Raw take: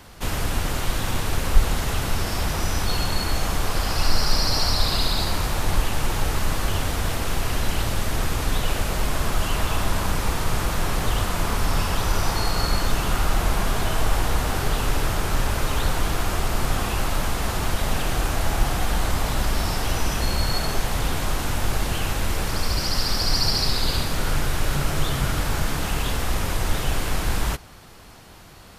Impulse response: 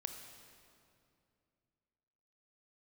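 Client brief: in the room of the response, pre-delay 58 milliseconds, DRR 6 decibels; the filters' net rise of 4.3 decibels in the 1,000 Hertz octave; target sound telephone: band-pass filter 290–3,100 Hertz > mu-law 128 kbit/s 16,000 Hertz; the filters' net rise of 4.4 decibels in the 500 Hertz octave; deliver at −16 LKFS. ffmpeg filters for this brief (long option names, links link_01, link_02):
-filter_complex "[0:a]equalizer=frequency=500:width_type=o:gain=5,equalizer=frequency=1000:width_type=o:gain=4,asplit=2[link_01][link_02];[1:a]atrim=start_sample=2205,adelay=58[link_03];[link_02][link_03]afir=irnorm=-1:irlink=0,volume=-4dB[link_04];[link_01][link_04]amix=inputs=2:normalize=0,highpass=290,lowpass=3100,volume=10dB" -ar 16000 -c:a pcm_mulaw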